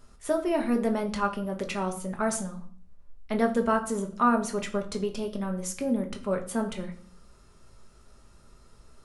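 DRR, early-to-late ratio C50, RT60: 3.0 dB, 12.5 dB, 0.50 s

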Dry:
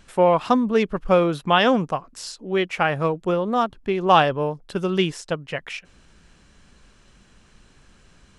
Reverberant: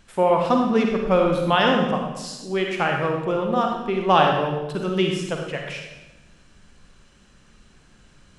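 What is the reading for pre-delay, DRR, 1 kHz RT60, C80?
38 ms, 1.5 dB, 1.0 s, 5.0 dB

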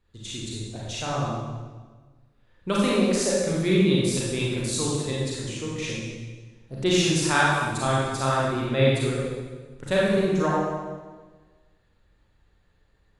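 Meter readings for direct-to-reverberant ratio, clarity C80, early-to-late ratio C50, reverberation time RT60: −6.0 dB, 0.5 dB, −2.0 dB, 1.4 s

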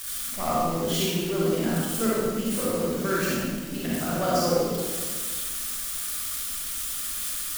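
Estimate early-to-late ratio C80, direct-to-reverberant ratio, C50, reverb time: −1.0 dB, −6.5 dB, −4.5 dB, 1.5 s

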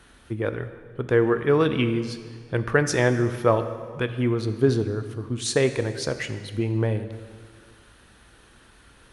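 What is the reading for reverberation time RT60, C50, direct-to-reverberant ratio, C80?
1.8 s, 11.0 dB, 9.0 dB, 12.0 dB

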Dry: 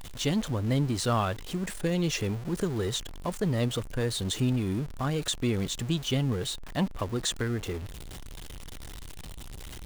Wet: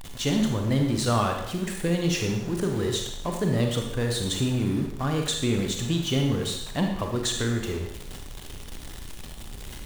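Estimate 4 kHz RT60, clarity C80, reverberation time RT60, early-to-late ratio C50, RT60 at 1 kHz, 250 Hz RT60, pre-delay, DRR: 0.80 s, 6.5 dB, 0.80 s, 4.0 dB, 0.80 s, 0.75 s, 33 ms, 2.5 dB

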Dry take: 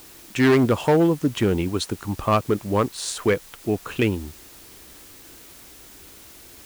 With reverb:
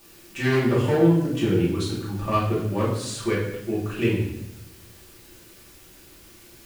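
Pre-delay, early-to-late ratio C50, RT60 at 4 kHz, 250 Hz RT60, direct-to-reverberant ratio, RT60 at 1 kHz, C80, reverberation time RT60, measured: 3 ms, 2.0 dB, 0.75 s, 1.2 s, −8.5 dB, 0.70 s, 6.0 dB, 0.80 s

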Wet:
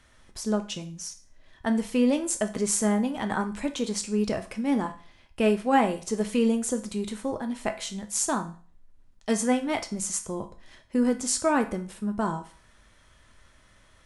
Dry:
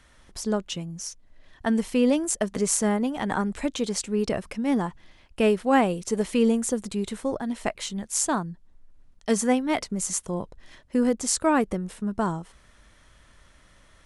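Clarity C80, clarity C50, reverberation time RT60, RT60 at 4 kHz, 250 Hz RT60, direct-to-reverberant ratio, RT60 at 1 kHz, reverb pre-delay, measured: 18.5 dB, 13.5 dB, 0.45 s, 0.40 s, 0.45 s, 6.0 dB, 0.45 s, 4 ms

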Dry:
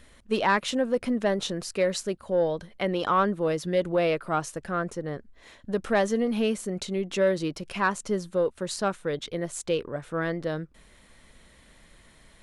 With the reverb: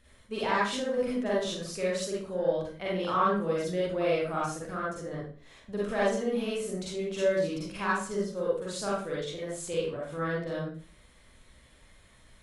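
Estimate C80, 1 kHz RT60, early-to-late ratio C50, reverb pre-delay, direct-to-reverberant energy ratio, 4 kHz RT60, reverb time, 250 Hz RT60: 5.0 dB, 0.40 s, −2.0 dB, 39 ms, −7.0 dB, 0.40 s, 0.40 s, 0.50 s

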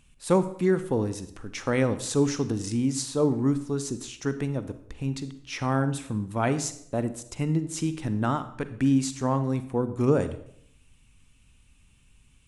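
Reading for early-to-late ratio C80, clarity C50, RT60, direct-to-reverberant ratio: 15.5 dB, 13.0 dB, 0.65 s, 11.5 dB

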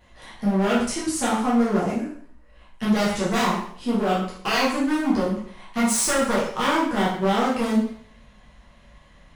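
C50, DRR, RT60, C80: 3.0 dB, −8.0 dB, 0.55 s, 7.0 dB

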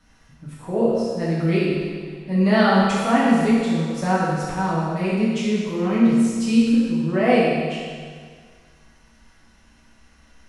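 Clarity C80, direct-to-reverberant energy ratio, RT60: 0.0 dB, −9.0 dB, 1.8 s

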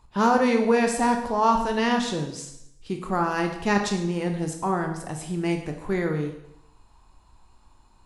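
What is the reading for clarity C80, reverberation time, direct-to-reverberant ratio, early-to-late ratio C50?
9.5 dB, 0.80 s, 3.5 dB, 7.0 dB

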